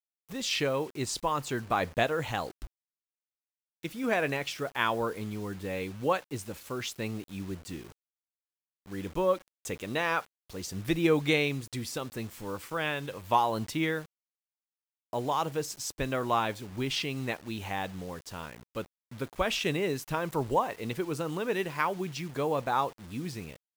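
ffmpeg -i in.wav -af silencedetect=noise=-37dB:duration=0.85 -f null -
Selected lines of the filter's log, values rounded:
silence_start: 2.65
silence_end: 3.84 | silence_duration: 1.19
silence_start: 7.81
silence_end: 8.91 | silence_duration: 1.10
silence_start: 14.02
silence_end: 15.13 | silence_duration: 1.11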